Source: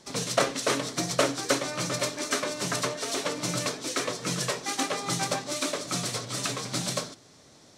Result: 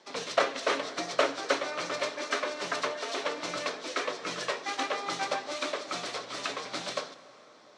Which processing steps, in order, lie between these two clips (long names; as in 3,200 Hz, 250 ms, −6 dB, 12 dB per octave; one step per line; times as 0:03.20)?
band-pass filter 420–3,700 Hz
dense smooth reverb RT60 4.6 s, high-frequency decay 0.5×, DRR 15 dB